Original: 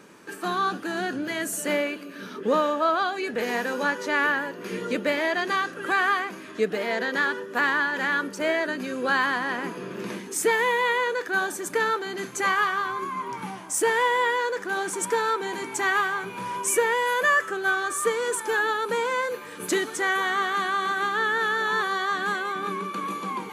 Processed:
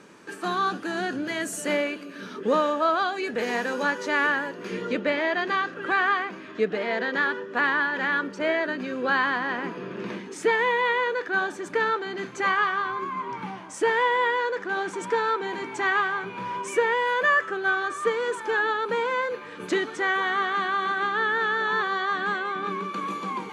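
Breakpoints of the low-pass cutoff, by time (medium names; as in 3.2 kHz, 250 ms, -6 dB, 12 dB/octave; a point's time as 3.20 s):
4.49 s 8.6 kHz
5.02 s 3.9 kHz
22.57 s 3.9 kHz
23.00 s 7 kHz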